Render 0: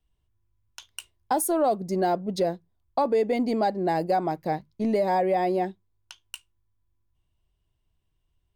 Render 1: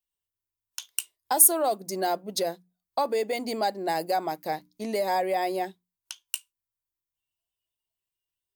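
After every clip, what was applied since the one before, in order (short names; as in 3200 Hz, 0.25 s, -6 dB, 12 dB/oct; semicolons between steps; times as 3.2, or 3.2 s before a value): RIAA curve recording; notches 60/120/180/240/300 Hz; spectral noise reduction 12 dB; gain -1 dB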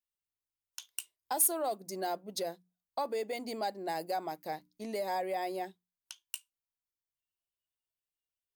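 soft clip -10.5 dBFS, distortion -17 dB; gain -8 dB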